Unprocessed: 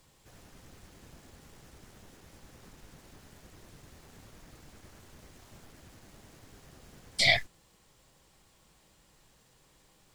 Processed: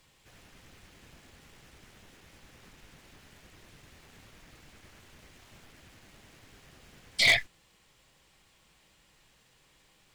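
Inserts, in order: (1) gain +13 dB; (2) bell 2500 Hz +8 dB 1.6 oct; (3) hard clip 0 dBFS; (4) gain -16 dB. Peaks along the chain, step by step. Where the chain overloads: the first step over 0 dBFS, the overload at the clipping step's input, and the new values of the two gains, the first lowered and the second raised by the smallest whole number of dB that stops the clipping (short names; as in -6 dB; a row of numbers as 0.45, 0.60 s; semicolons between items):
+3.0, +8.5, 0.0, -16.0 dBFS; step 1, 8.5 dB; step 1 +4 dB, step 4 -7 dB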